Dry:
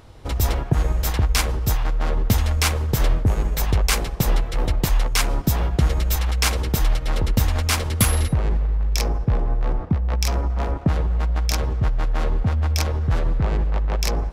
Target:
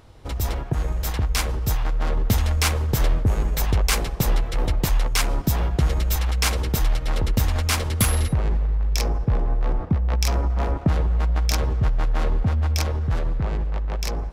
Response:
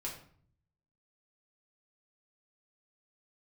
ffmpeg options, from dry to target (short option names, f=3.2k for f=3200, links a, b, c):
-filter_complex "[0:a]asplit=2[a][b];[b]asoftclip=type=tanh:threshold=-17.5dB,volume=-4dB[c];[a][c]amix=inputs=2:normalize=0,dynaudnorm=f=100:g=31:m=11.5dB,volume=-7.5dB"